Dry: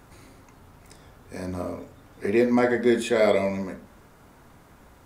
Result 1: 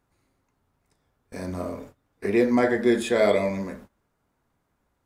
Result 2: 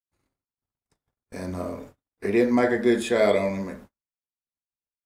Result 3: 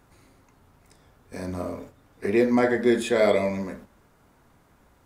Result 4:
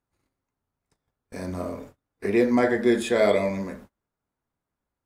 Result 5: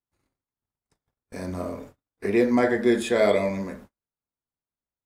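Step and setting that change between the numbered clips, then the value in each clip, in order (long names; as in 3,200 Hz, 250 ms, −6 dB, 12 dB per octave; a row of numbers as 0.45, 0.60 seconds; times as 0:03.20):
noise gate, range: −21, −59, −7, −33, −46 decibels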